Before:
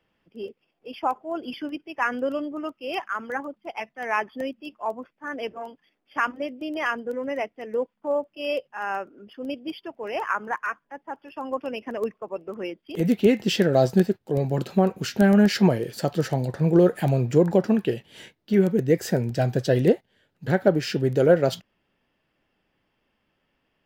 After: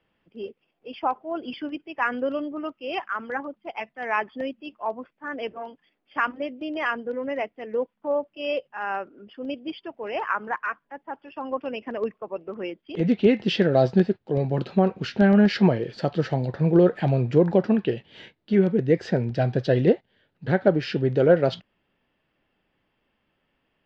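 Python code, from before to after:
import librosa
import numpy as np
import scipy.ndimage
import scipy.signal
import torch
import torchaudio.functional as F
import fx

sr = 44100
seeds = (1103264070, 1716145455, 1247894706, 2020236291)

y = scipy.signal.sosfilt(scipy.signal.butter(4, 4400.0, 'lowpass', fs=sr, output='sos'), x)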